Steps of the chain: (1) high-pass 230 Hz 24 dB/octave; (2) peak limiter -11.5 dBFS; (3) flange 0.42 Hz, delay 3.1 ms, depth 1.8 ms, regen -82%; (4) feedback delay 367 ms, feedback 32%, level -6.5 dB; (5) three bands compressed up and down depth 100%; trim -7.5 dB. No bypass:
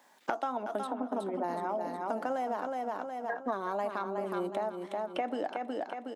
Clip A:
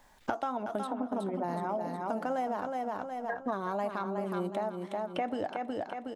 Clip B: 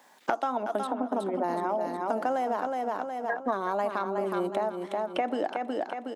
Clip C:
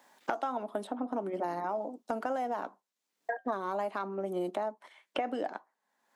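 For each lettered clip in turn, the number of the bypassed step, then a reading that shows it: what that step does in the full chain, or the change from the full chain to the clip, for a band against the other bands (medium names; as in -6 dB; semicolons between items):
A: 1, 125 Hz band +7.5 dB; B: 3, loudness change +4.5 LU; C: 4, momentary loudness spread change +2 LU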